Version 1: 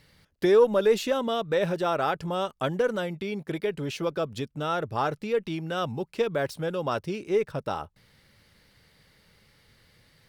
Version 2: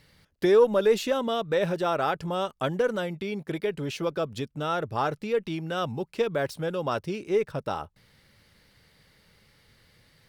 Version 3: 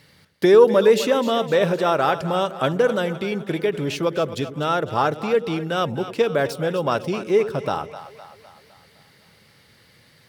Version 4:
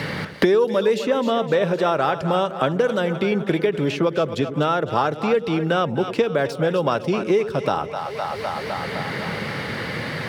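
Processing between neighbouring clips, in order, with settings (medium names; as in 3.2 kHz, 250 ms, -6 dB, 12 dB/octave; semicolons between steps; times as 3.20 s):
no audible change
high-pass 100 Hz; two-band feedback delay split 530 Hz, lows 95 ms, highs 255 ms, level -12.5 dB; trim +6.5 dB
treble shelf 8.8 kHz -11.5 dB; three bands compressed up and down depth 100%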